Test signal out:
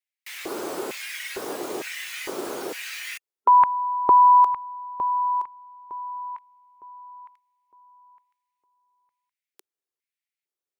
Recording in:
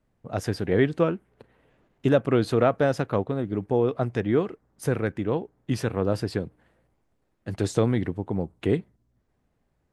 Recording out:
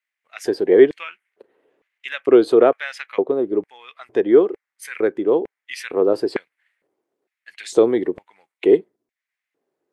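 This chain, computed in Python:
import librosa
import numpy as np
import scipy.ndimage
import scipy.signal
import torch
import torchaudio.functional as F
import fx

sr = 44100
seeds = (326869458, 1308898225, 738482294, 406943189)

y = fx.filter_lfo_highpass(x, sr, shape='square', hz=1.1, low_hz=380.0, high_hz=2100.0, q=3.5)
y = fx.noise_reduce_blind(y, sr, reduce_db=7)
y = F.gain(torch.from_numpy(y), 2.5).numpy()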